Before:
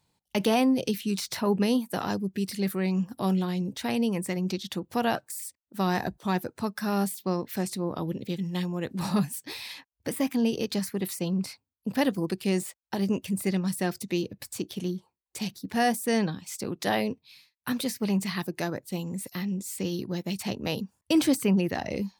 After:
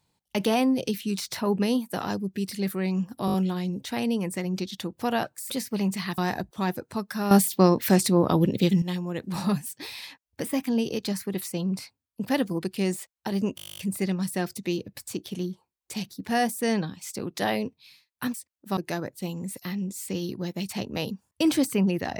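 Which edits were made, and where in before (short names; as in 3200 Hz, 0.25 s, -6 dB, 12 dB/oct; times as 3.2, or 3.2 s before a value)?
3.26 stutter 0.02 s, 5 plays
5.42–5.85 swap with 17.79–18.47
6.98–8.49 gain +10 dB
13.23 stutter 0.02 s, 12 plays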